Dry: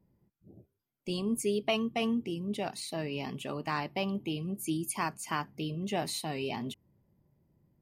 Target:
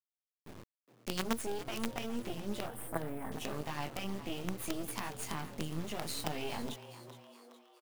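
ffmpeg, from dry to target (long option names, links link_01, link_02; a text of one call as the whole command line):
ffmpeg -i in.wav -filter_complex "[0:a]asettb=1/sr,asplit=3[link_01][link_02][link_03];[link_01]atrim=end=5.194[link_04];[link_02]atrim=start=5.19:end=5.7,asetpts=PTS-STARTPTS,afade=type=in:duration=0.004:curve=qsin,afade=type=out:start_time=0.506:duration=0.004:curve=qsin,equalizer=frequency=220:width_type=o:width=1:gain=9.5[link_05];[link_03]atrim=start=5.696[link_06];[link_04][link_05]acrossfade=duration=0.004:curve1=hsin:curve2=qsin[link_07];[link_07][link_06]acrossfade=duration=0.004:curve1=qsin:curve2=hsin,alimiter=level_in=3.5dB:limit=-24dB:level=0:latency=1:release=59,volume=-3.5dB,acompressor=threshold=-42dB:ratio=2.5,flanger=delay=18:depth=4.1:speed=0.34,acrusher=bits=7:dc=4:mix=0:aa=0.000001,asettb=1/sr,asplit=3[link_08][link_09][link_10];[link_08]atrim=end=2.664[link_11];[link_09]atrim=start=2.66:end=3.32,asetpts=PTS-STARTPTS,afade=type=in:duration=0.004:curve=qsin,afade=type=out:start_time=0.656:duration=0.004:curve=qsin,asuperstop=centerf=4300:order=8:qfactor=0.6[link_12];[link_10]atrim=start=3.316[link_13];[link_11][link_12]acrossfade=duration=0.004:curve1=hsin:curve2=qsin[link_14];[link_14][link_13]acrossfade=duration=0.004:curve1=qsin:curve2=hsin,asplit=6[link_15][link_16][link_17][link_18][link_19][link_20];[link_16]adelay=415,afreqshift=120,volume=-14dB[link_21];[link_17]adelay=830,afreqshift=240,volume=-20dB[link_22];[link_18]adelay=1245,afreqshift=360,volume=-26dB[link_23];[link_19]adelay=1660,afreqshift=480,volume=-32.1dB[link_24];[link_20]adelay=2075,afreqshift=600,volume=-38.1dB[link_25];[link_15][link_21][link_22][link_23][link_24][link_25]amix=inputs=6:normalize=0,volume=10dB" out.wav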